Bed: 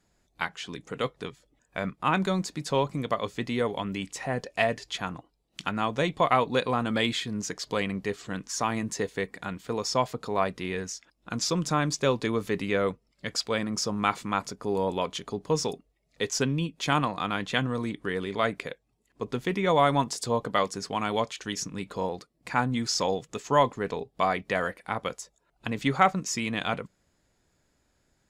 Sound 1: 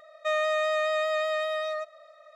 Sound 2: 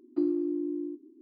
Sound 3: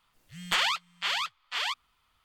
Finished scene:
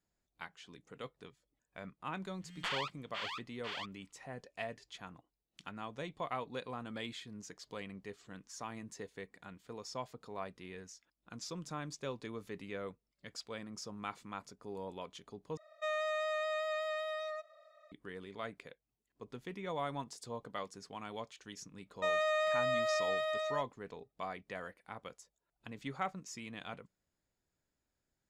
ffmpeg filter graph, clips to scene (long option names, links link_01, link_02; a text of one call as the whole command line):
ffmpeg -i bed.wav -i cue0.wav -i cue1.wav -i cue2.wav -filter_complex "[1:a]asplit=2[link_01][link_02];[0:a]volume=-16.5dB[link_03];[3:a]aemphasis=mode=reproduction:type=50kf[link_04];[link_02]agate=range=-34dB:threshold=-45dB:ratio=16:release=100:detection=peak[link_05];[link_03]asplit=2[link_06][link_07];[link_06]atrim=end=15.574[link_08];[link_01]atrim=end=2.35,asetpts=PTS-STARTPTS,volume=-9.5dB[link_09];[link_07]atrim=start=17.916[link_10];[link_04]atrim=end=2.24,asetpts=PTS-STARTPTS,volume=-10dB,afade=type=in:duration=0.004:curve=hsin,afade=type=out:start_time=2.236:duration=0.004:curve=hsin,adelay=2120[link_11];[link_05]atrim=end=2.35,asetpts=PTS-STARTPTS,volume=-6dB,afade=type=in:duration=0.004:curve=hsin,afade=type=out:start_time=2.346:duration=0.004:curve=hsin,adelay=21770[link_12];[link_08][link_09]acrossfade=duration=0.004:curve1=hsin:curve2=hsin[link_13];[link_13][link_10]acrossfade=duration=0.004:curve1=hsin:curve2=hsin[link_14];[link_14][link_11][link_12]amix=inputs=3:normalize=0" out.wav